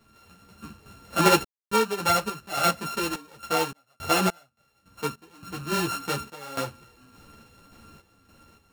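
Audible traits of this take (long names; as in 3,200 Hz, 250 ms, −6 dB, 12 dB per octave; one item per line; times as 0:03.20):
a buzz of ramps at a fixed pitch in blocks of 32 samples
sample-and-hold tremolo, depth 100%
a shimmering, thickened sound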